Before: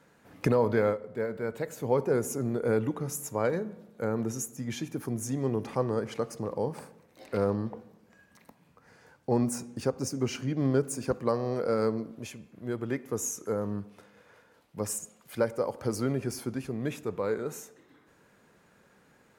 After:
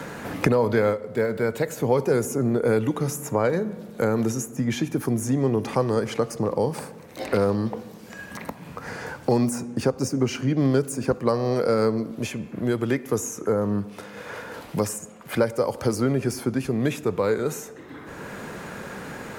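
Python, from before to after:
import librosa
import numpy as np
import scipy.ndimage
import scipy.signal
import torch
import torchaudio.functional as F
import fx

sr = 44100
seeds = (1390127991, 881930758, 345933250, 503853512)

y = fx.band_squash(x, sr, depth_pct=70)
y = y * 10.0 ** (7.0 / 20.0)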